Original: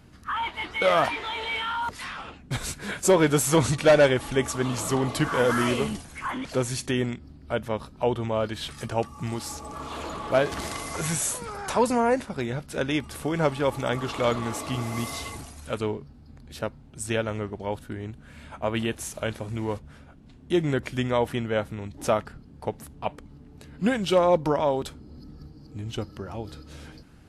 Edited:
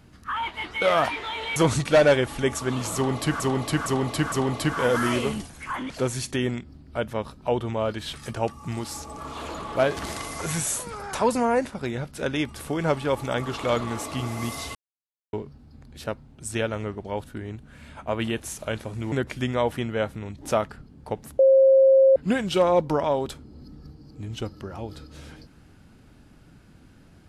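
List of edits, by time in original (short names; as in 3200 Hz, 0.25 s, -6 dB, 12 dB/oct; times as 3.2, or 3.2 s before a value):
1.56–3.49 cut
4.87–5.33 loop, 4 plays
15.3–15.88 mute
19.67–20.68 cut
22.95–23.72 bleep 535 Hz -12 dBFS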